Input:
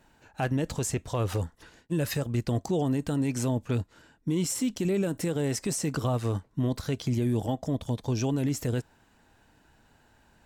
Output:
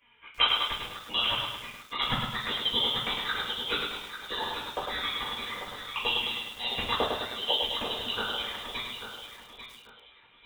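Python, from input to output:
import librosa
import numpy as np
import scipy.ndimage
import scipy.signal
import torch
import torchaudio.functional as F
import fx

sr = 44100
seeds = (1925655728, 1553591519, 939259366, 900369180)

y = scipy.signal.sosfilt(scipy.signal.butter(2, 1200.0, 'highpass', fs=sr, output='sos'), x)
y = fx.rider(y, sr, range_db=3, speed_s=0.5)
y = fx.transient(y, sr, attack_db=11, sustain_db=-6)
y = fx.env_flanger(y, sr, rest_ms=4.3, full_db=-32.0)
y = fx.echo_feedback(y, sr, ms=842, feedback_pct=27, wet_db=-9.5)
y = fx.room_shoebox(y, sr, seeds[0], volume_m3=280.0, walls='furnished', distance_m=5.6)
y = fx.freq_invert(y, sr, carrier_hz=3900)
y = fx.echo_crushed(y, sr, ms=104, feedback_pct=55, bits=8, wet_db=-4)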